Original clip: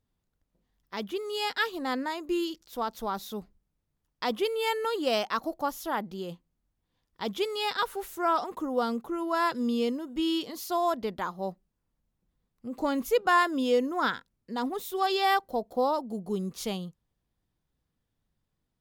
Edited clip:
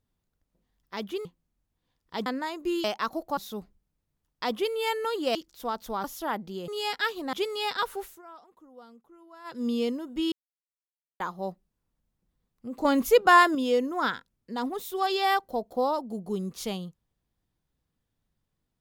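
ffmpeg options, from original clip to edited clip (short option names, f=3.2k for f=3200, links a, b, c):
-filter_complex "[0:a]asplit=15[a][b][c][d][e][f][g][h][i][j][k][l][m][n][o];[a]atrim=end=1.252[p];[b]atrim=start=6.318:end=7.332[q];[c]atrim=start=1.898:end=2.482[r];[d]atrim=start=5.148:end=5.682[s];[e]atrim=start=3.168:end=5.152[t];[f]atrim=start=2.478:end=3.172[u];[g]atrim=start=5.678:end=6.322[v];[h]atrim=start=1.248:end=1.902[w];[i]atrim=start=7.328:end=8.22,asetpts=PTS-STARTPTS,afade=t=out:st=0.662:d=0.23:silence=0.0794328[x];[j]atrim=start=8.22:end=9.44,asetpts=PTS-STARTPTS,volume=-22dB[y];[k]atrim=start=9.44:end=10.32,asetpts=PTS-STARTPTS,afade=t=in:d=0.23:silence=0.0794328,afade=t=out:st=0.876:d=0.004:c=hsin[z];[l]atrim=start=10.32:end=11.2,asetpts=PTS-STARTPTS,volume=0[aa];[m]atrim=start=11.2:end=12.852,asetpts=PTS-STARTPTS,afade=t=in:d=0.004:c=hsin[ab];[n]atrim=start=12.848:end=13.552,asetpts=PTS-STARTPTS,volume=5.5dB[ac];[o]atrim=start=13.548[ad];[p][q]acrossfade=d=0.004:c1=hsin:c2=hsin[ae];[ae][r]acrossfade=d=0.004:c1=hsin:c2=hsin[af];[af][s]acrossfade=d=0.004:c1=hsin:c2=hsin[ag];[ag][t]acrossfade=d=0.004:c1=hsin:c2=hsin[ah];[ah][u]acrossfade=d=0.004:c1=hsin:c2=hsin[ai];[ai][v]acrossfade=d=0.004:c1=hsin:c2=hsin[aj];[aj][w]acrossfade=d=0.004:c1=hsin:c2=hsin[ak];[x][y][z][aa][ab]concat=n=5:v=0:a=1[al];[ak][al]acrossfade=d=0.004:c1=hsin:c2=hsin[am];[am][ac]acrossfade=d=0.004:c1=hsin:c2=hsin[an];[an][ad]acrossfade=d=0.004:c1=hsin:c2=hsin"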